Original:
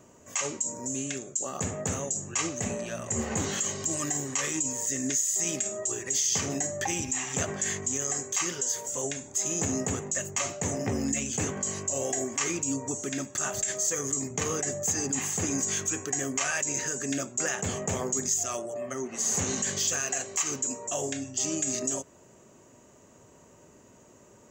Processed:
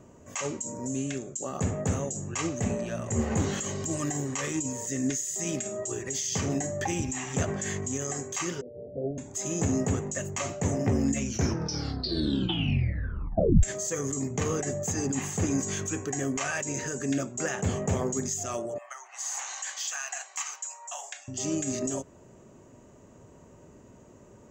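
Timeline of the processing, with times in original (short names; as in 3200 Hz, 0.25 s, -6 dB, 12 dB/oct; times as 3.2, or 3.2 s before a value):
8.61–9.18 steep low-pass 710 Hz 96 dB/oct
11.15 tape stop 2.48 s
18.78–21.28 elliptic high-pass 790 Hz, stop band 80 dB
whole clip: tilt -2 dB/oct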